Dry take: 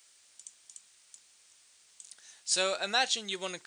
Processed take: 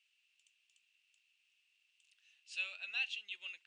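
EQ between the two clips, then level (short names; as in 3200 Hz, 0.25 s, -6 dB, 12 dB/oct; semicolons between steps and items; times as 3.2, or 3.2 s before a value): band-pass 2700 Hz, Q 13; +2.5 dB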